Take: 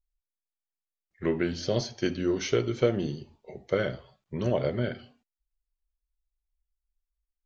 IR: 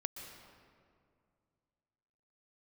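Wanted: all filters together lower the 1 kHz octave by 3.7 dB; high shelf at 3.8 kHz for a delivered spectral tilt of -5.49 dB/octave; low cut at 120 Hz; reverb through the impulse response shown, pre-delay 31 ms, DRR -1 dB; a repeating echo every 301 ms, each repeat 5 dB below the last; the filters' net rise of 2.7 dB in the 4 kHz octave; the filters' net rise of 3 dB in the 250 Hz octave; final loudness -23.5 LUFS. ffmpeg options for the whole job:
-filter_complex "[0:a]highpass=120,equalizer=f=250:t=o:g=5,equalizer=f=1000:t=o:g=-6,highshelf=f=3800:g=-5,equalizer=f=4000:t=o:g=7,aecho=1:1:301|602|903|1204|1505|1806|2107:0.562|0.315|0.176|0.0988|0.0553|0.031|0.0173,asplit=2[s0][s1];[1:a]atrim=start_sample=2205,adelay=31[s2];[s1][s2]afir=irnorm=-1:irlink=0,volume=1.26[s3];[s0][s3]amix=inputs=2:normalize=0,volume=1.06"

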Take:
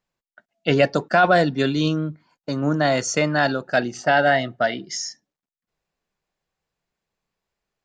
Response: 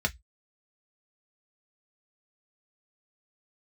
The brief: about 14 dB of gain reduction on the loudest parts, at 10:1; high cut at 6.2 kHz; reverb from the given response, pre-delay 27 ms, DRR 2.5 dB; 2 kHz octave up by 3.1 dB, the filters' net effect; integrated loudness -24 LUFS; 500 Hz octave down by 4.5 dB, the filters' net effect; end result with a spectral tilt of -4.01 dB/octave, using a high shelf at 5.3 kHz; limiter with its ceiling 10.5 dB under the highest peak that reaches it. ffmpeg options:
-filter_complex "[0:a]lowpass=6200,equalizer=f=500:t=o:g=-6.5,equalizer=f=2000:t=o:g=4,highshelf=f=5300:g=5.5,acompressor=threshold=0.0447:ratio=10,alimiter=limit=0.0794:level=0:latency=1,asplit=2[s0][s1];[1:a]atrim=start_sample=2205,adelay=27[s2];[s1][s2]afir=irnorm=-1:irlink=0,volume=0.299[s3];[s0][s3]amix=inputs=2:normalize=0,volume=2.24"

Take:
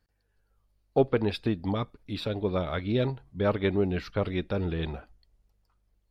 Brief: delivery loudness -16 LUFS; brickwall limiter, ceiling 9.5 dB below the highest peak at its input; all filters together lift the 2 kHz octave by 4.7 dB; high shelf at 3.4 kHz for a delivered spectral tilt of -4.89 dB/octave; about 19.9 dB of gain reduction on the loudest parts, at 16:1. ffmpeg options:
-af "equalizer=f=2000:t=o:g=4,highshelf=f=3400:g=6.5,acompressor=threshold=0.0141:ratio=16,volume=29.9,alimiter=limit=0.501:level=0:latency=1"

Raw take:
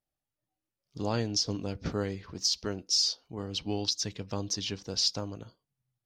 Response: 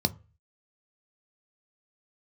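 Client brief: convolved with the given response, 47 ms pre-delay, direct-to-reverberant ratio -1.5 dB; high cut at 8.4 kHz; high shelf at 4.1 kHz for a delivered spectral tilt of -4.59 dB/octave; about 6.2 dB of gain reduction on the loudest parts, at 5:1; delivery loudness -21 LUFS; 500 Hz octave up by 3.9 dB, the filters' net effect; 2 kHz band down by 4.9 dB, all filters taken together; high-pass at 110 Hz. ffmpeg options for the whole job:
-filter_complex "[0:a]highpass=110,lowpass=8400,equalizer=f=500:t=o:g=5,equalizer=f=2000:t=o:g=-6,highshelf=f=4100:g=-5,acompressor=threshold=0.0282:ratio=5,asplit=2[s0][s1];[1:a]atrim=start_sample=2205,adelay=47[s2];[s1][s2]afir=irnorm=-1:irlink=0,volume=0.473[s3];[s0][s3]amix=inputs=2:normalize=0,volume=2.51"

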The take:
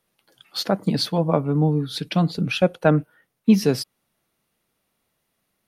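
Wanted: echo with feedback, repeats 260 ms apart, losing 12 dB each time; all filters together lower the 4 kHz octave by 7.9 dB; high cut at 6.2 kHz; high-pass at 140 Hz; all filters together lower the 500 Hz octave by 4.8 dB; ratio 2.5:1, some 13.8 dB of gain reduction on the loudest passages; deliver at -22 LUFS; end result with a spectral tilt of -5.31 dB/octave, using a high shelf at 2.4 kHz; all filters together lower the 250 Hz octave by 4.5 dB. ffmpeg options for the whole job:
-af "highpass=140,lowpass=6200,equalizer=f=250:t=o:g=-4,equalizer=f=500:t=o:g=-4.5,highshelf=f=2400:g=-5.5,equalizer=f=4000:t=o:g=-3.5,acompressor=threshold=0.0141:ratio=2.5,aecho=1:1:260|520|780:0.251|0.0628|0.0157,volume=5.62"

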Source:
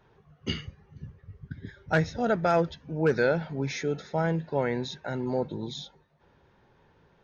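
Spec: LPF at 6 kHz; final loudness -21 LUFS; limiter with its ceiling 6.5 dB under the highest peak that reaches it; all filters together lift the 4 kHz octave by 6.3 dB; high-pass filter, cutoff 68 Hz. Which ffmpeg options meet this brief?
-af "highpass=68,lowpass=6000,equalizer=f=4000:t=o:g=8.5,volume=2.99,alimiter=limit=0.398:level=0:latency=1"

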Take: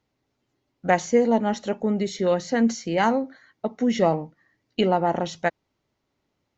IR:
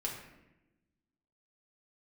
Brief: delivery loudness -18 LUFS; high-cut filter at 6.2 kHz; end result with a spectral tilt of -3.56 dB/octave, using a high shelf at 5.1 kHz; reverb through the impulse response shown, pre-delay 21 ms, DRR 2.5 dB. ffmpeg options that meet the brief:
-filter_complex "[0:a]lowpass=6200,highshelf=f=5100:g=-8,asplit=2[s0][s1];[1:a]atrim=start_sample=2205,adelay=21[s2];[s1][s2]afir=irnorm=-1:irlink=0,volume=0.596[s3];[s0][s3]amix=inputs=2:normalize=0,volume=1.5"

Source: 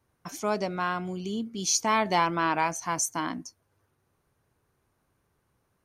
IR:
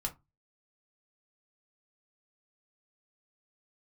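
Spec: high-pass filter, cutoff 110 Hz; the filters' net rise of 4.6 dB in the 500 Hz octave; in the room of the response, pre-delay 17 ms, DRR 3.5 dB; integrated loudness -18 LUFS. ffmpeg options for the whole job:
-filter_complex "[0:a]highpass=110,equalizer=f=500:t=o:g=6.5,asplit=2[s0][s1];[1:a]atrim=start_sample=2205,adelay=17[s2];[s1][s2]afir=irnorm=-1:irlink=0,volume=0.596[s3];[s0][s3]amix=inputs=2:normalize=0,volume=2.11"

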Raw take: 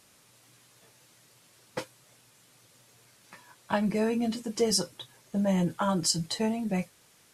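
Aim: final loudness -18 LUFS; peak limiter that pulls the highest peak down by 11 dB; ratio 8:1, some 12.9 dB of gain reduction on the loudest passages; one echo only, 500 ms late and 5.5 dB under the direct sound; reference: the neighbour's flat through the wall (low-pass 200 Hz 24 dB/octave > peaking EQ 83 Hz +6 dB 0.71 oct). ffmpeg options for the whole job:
-af "acompressor=threshold=0.0178:ratio=8,alimiter=level_in=3.16:limit=0.0631:level=0:latency=1,volume=0.316,lowpass=f=200:w=0.5412,lowpass=f=200:w=1.3066,equalizer=f=83:t=o:w=0.71:g=6,aecho=1:1:500:0.531,volume=28.2"

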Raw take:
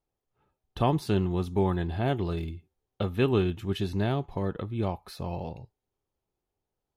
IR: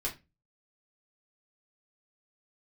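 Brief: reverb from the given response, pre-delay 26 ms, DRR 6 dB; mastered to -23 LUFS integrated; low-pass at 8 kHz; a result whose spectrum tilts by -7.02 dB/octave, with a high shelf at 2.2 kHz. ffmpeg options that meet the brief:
-filter_complex "[0:a]lowpass=8000,highshelf=f=2200:g=-3.5,asplit=2[s0][s1];[1:a]atrim=start_sample=2205,adelay=26[s2];[s1][s2]afir=irnorm=-1:irlink=0,volume=0.355[s3];[s0][s3]amix=inputs=2:normalize=0,volume=1.88"

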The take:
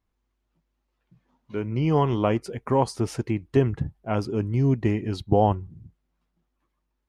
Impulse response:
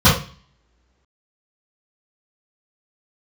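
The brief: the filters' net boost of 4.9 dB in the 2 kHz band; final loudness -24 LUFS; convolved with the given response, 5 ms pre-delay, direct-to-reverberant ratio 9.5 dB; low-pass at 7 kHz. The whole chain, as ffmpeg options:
-filter_complex "[0:a]lowpass=7000,equalizer=f=2000:t=o:g=6,asplit=2[s0][s1];[1:a]atrim=start_sample=2205,adelay=5[s2];[s1][s2]afir=irnorm=-1:irlink=0,volume=0.0188[s3];[s0][s3]amix=inputs=2:normalize=0,volume=0.841"

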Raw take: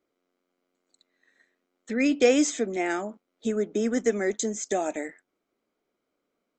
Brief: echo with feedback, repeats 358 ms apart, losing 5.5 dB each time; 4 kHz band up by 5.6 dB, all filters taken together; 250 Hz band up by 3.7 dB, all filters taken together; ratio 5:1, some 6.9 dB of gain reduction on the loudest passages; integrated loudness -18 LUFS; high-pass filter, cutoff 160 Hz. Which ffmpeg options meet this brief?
-af "highpass=160,equalizer=f=250:t=o:g=5,equalizer=f=4000:t=o:g=7.5,acompressor=threshold=0.0891:ratio=5,aecho=1:1:358|716|1074|1432|1790|2148|2506:0.531|0.281|0.149|0.079|0.0419|0.0222|0.0118,volume=2.66"

